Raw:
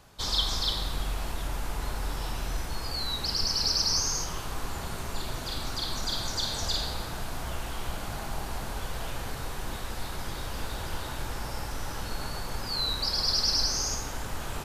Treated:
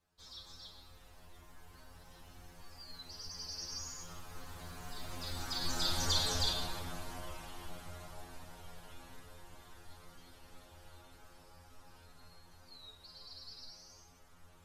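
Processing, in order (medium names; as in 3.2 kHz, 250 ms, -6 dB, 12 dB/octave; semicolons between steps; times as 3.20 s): Doppler pass-by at 6.11 s, 16 m/s, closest 6.8 m; inharmonic resonator 85 Hz, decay 0.36 s, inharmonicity 0.002; trim +8.5 dB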